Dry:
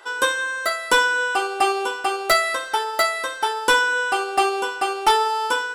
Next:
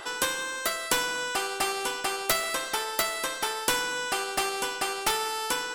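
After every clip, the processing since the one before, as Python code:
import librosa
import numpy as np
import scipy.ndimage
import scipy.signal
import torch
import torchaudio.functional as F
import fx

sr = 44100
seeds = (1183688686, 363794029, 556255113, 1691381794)

y = fx.spectral_comp(x, sr, ratio=2.0)
y = y * 10.0 ** (2.0 / 20.0)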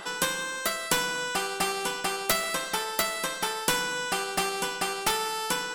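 y = fx.peak_eq(x, sr, hz=180.0, db=14.5, octaves=0.32)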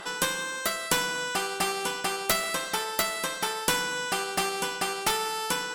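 y = fx.cheby_harmonics(x, sr, harmonics=(6,), levels_db=(-29,), full_scale_db=-7.5)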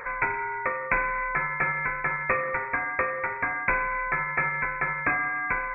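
y = fx.freq_invert(x, sr, carrier_hz=2500)
y = y * 10.0 ** (3.5 / 20.0)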